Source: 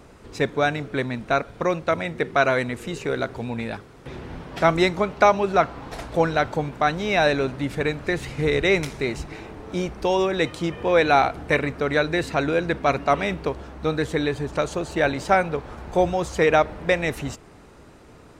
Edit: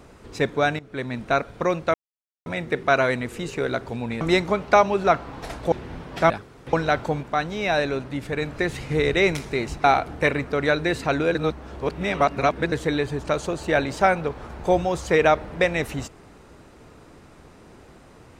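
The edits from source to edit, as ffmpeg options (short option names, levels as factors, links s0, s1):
-filter_complex "[0:a]asplit=12[s0][s1][s2][s3][s4][s5][s6][s7][s8][s9][s10][s11];[s0]atrim=end=0.79,asetpts=PTS-STARTPTS,afade=t=out:st=0.786:d=0.004:c=hsin:silence=0.133352[s12];[s1]atrim=start=0.79:end=1.94,asetpts=PTS-STARTPTS,afade=t=in:d=0.4:silence=0.133352,afade=t=out:st=1.146:d=0.004:c=hsin,apad=pad_dur=0.52[s13];[s2]atrim=start=1.94:end=3.692,asetpts=PTS-STARTPTS,afade=t=in:d=0.004:c=hsin[s14];[s3]atrim=start=4.698:end=6.212[s15];[s4]atrim=start=4.118:end=4.702[s16];[s5]atrim=start=3.688:end=4.122[s17];[s6]atrim=start=6.208:end=6.712[s18];[s7]atrim=start=6.708:end=7.902,asetpts=PTS-STARTPTS,volume=0.708[s19];[s8]atrim=start=7.898:end=9.322[s20];[s9]atrim=start=11.118:end=12.632[s21];[s10]atrim=start=12.628:end=14.002,asetpts=PTS-STARTPTS,areverse[s22];[s11]atrim=start=13.998[s23];[s12][s13][s14]concat=n=3:v=0:a=1[s24];[s24][s15]acrossfade=d=0.004:c1=hsin:c2=hsin[s25];[s25][s16]acrossfade=d=0.004:c1=hsin:c2=hsin[s26];[s26][s17]acrossfade=d=0.004:c1=hsin:c2=hsin[s27];[s27][s18]acrossfade=d=0.004:c1=hsin:c2=hsin[s28];[s28][s19]acrossfade=d=0.004:c1=hsin:c2=hsin[s29];[s29][s20]acrossfade=d=0.004:c1=hsin:c2=hsin[s30];[s30][s21]acrossfade=d=0.004:c1=hsin:c2=hsin[s31];[s31][s22]acrossfade=d=0.004:c1=hsin:c2=hsin[s32];[s32][s23]acrossfade=d=0.004:c1=hsin:c2=hsin"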